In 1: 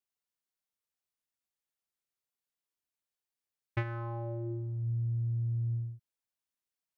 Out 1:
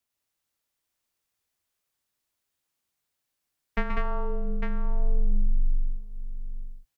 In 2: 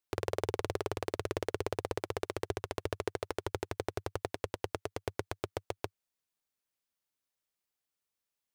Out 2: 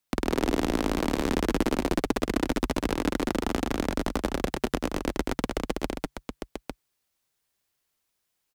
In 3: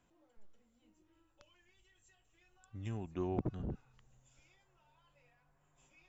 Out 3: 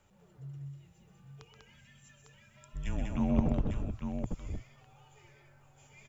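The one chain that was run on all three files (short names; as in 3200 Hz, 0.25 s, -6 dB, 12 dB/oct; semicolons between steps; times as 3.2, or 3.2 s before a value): tapped delay 0.128/0.196/0.852 s -7/-3.5/-6.5 dB; frequency shift -140 Hz; gain +7.5 dB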